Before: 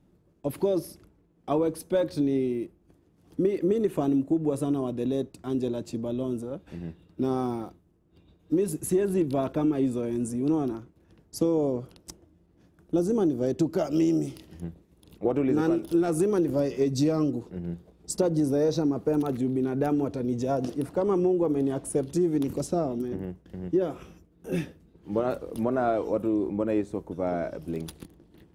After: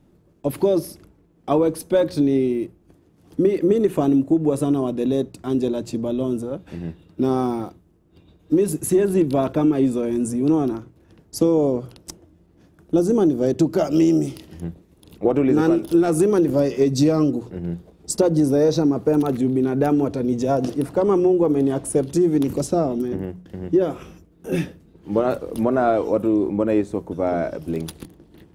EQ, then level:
mains-hum notches 60/120/180 Hz
+7.0 dB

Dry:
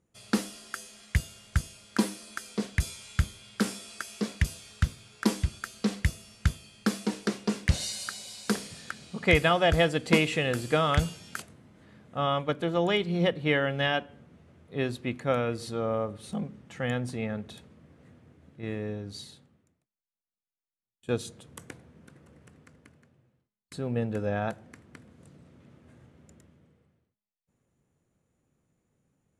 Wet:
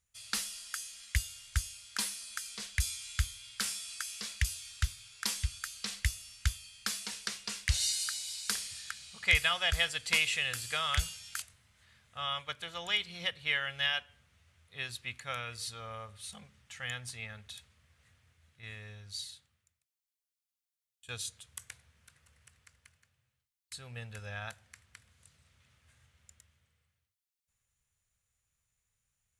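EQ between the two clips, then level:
guitar amp tone stack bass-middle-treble 10-0-10
parametric band 160 Hz −8.5 dB 0.59 octaves
parametric band 610 Hz −7 dB 2.3 octaves
+4.5 dB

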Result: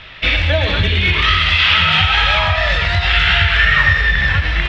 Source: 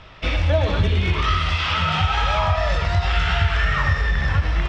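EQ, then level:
flat-topped bell 2,600 Hz +10.5 dB
+2.0 dB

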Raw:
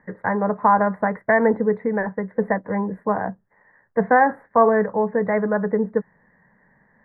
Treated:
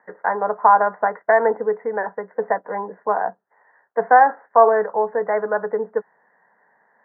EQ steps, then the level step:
loudspeaker in its box 420–2,100 Hz, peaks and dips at 430 Hz +5 dB, 940 Hz +5 dB, 1,400 Hz +7 dB
parametric band 720 Hz +8.5 dB 0.32 octaves
−2.5 dB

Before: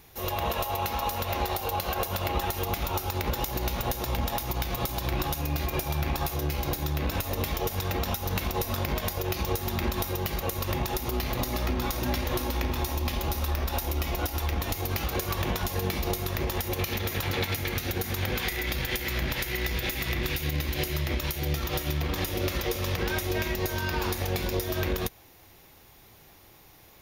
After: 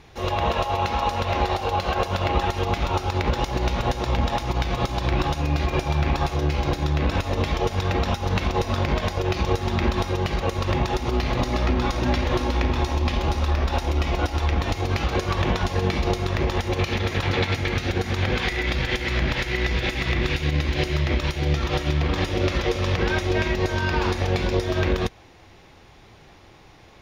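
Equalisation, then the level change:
high-frequency loss of the air 120 metres
+7.0 dB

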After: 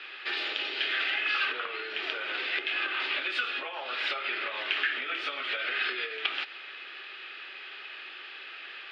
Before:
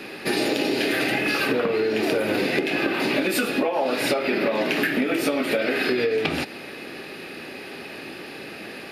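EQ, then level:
loudspeaker in its box 310–3,600 Hz, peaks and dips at 370 Hz +7 dB, 1,300 Hz +5 dB, 3,200 Hz +9 dB
first difference
parametric band 1,400 Hz +8.5 dB 1.5 octaves
0.0 dB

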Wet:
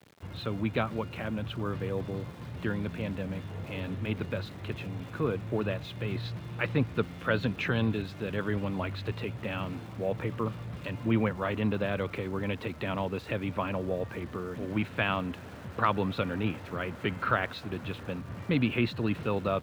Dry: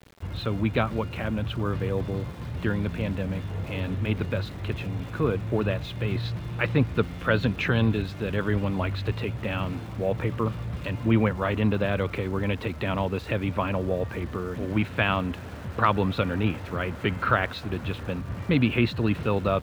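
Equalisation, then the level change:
high-pass filter 100 Hz
−4.5 dB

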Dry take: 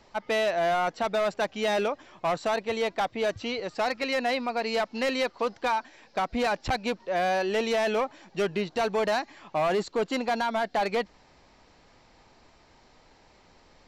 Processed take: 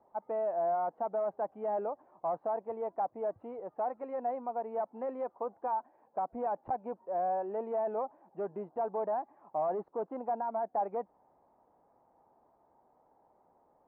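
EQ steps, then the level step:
high-pass filter 300 Hz 6 dB per octave
transistor ladder low-pass 1,000 Hz, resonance 45%
high-frequency loss of the air 240 metres
0.0 dB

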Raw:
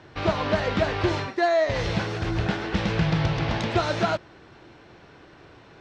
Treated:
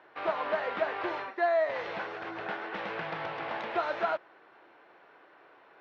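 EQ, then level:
band-pass filter 580–2,000 Hz
−3.0 dB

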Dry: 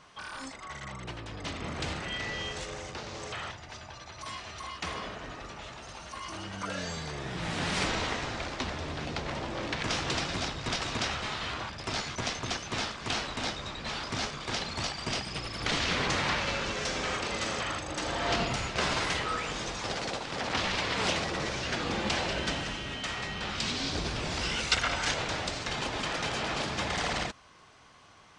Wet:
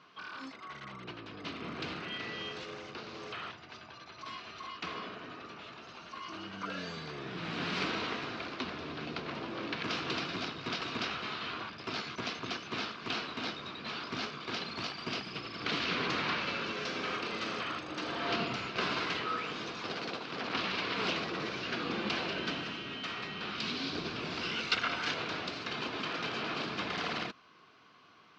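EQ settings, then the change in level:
loudspeaker in its box 200–4,300 Hz, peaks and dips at 570 Hz −8 dB, 840 Hz −9 dB, 1,900 Hz −7 dB, 3,400 Hz −4 dB
0.0 dB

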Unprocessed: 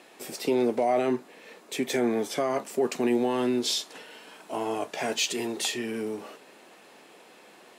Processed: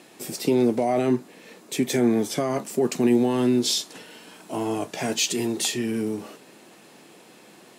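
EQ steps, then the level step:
bass and treble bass +13 dB, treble +6 dB
parametric band 330 Hz +3.5 dB 0.23 octaves
0.0 dB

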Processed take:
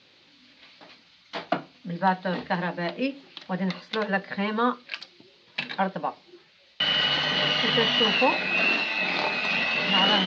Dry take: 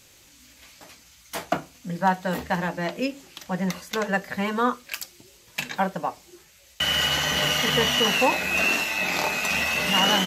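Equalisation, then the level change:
Chebyshev high-pass filter 190 Hz, order 2
low-pass with resonance 4,200 Hz, resonance Q 3.1
high-frequency loss of the air 220 metres
0.0 dB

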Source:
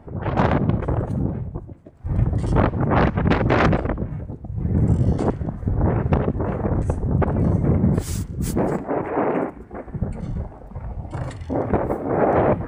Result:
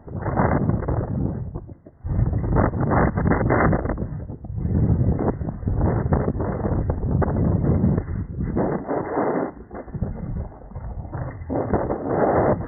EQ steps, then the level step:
linear-phase brick-wall low-pass 2,100 Hz
−1.0 dB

